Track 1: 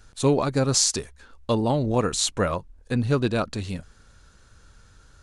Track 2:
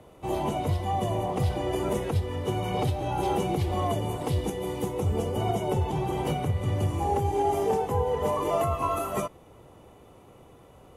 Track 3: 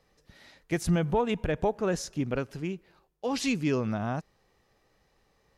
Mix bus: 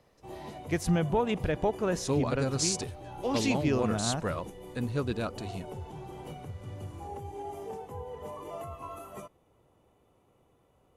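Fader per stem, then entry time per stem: -9.0, -14.5, -1.0 dB; 1.85, 0.00, 0.00 s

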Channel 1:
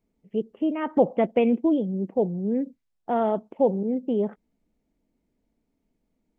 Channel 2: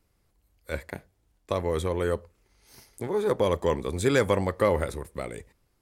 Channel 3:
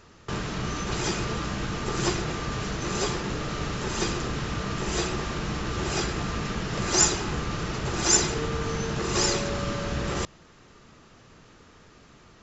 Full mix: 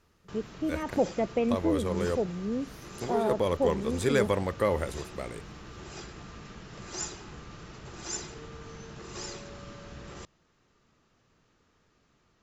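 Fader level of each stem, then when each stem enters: -6.5, -3.5, -15.5 dB; 0.00, 0.00, 0.00 s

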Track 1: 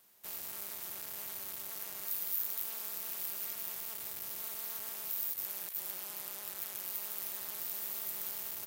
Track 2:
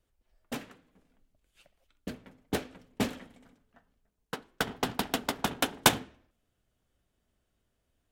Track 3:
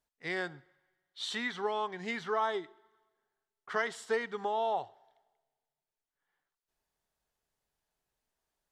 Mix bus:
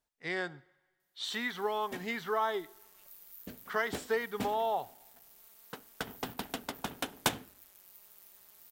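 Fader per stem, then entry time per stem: -17.0, -8.0, 0.0 dB; 1.00, 1.40, 0.00 s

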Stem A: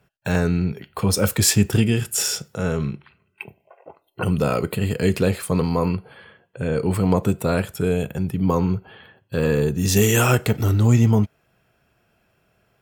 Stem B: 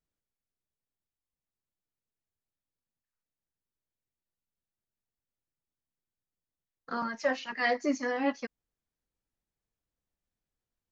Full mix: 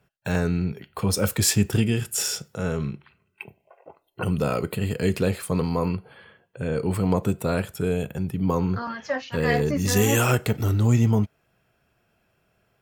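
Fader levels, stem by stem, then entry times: -3.5, +1.5 dB; 0.00, 1.85 s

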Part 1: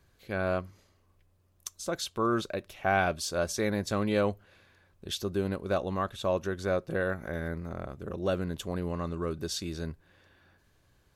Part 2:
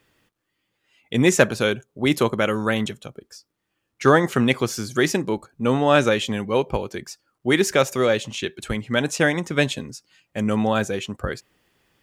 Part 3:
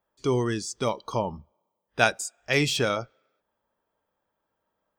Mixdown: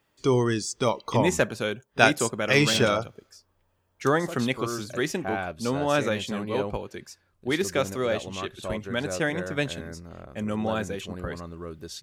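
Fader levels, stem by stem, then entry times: -5.0, -7.5, +2.5 dB; 2.40, 0.00, 0.00 s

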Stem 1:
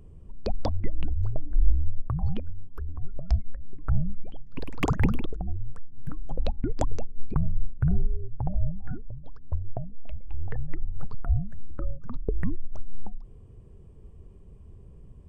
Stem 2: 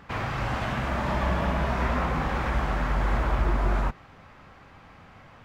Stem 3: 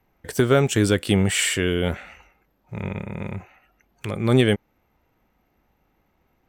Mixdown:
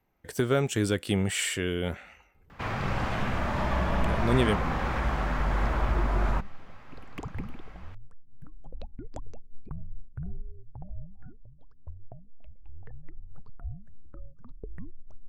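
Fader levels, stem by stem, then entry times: -13.5, -2.0, -7.5 dB; 2.35, 2.50, 0.00 s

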